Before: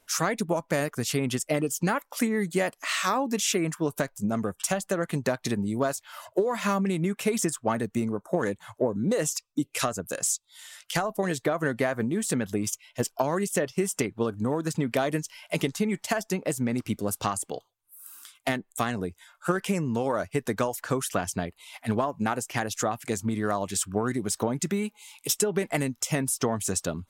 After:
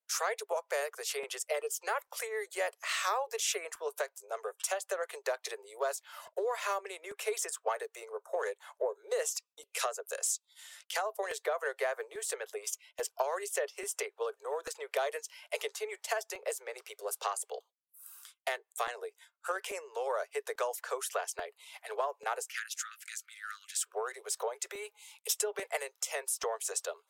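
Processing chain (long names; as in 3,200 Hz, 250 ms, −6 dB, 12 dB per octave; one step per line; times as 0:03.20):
noise gate −49 dBFS, range −23 dB
Butterworth high-pass 410 Hz 96 dB per octave, from 0:22.48 1,300 Hz, from 0:23.84 420 Hz
regular buffer underruns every 0.84 s, samples 128, repeat, from 0:00.39
level −5.5 dB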